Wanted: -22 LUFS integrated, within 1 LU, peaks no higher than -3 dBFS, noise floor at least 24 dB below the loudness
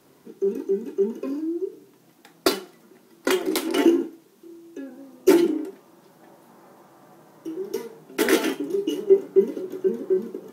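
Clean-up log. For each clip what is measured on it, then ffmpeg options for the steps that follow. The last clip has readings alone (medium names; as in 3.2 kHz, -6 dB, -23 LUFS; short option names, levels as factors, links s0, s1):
loudness -24.0 LUFS; peak level -4.0 dBFS; loudness target -22.0 LUFS
-> -af "volume=1.26,alimiter=limit=0.708:level=0:latency=1"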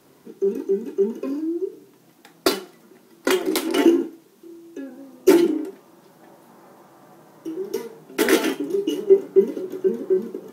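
loudness -22.0 LUFS; peak level -3.0 dBFS; noise floor -55 dBFS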